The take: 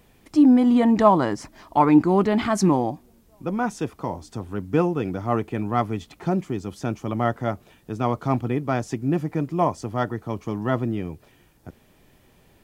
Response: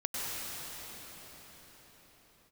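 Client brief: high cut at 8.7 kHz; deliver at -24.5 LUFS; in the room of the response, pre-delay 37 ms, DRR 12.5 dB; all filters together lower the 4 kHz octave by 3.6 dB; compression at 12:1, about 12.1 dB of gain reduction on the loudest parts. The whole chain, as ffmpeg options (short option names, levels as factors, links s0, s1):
-filter_complex "[0:a]lowpass=8700,equalizer=f=4000:t=o:g=-5,acompressor=threshold=0.0708:ratio=12,asplit=2[s0][s1];[1:a]atrim=start_sample=2205,adelay=37[s2];[s1][s2]afir=irnorm=-1:irlink=0,volume=0.112[s3];[s0][s3]amix=inputs=2:normalize=0,volume=1.88"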